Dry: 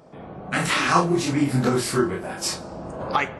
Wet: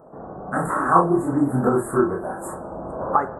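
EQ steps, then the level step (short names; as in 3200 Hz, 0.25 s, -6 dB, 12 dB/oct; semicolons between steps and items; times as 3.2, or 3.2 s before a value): inverse Chebyshev band-stop 2200–5900 Hz, stop band 40 dB; bell 120 Hz -7 dB 2.3 oct; high shelf 4400 Hz -11.5 dB; +5.0 dB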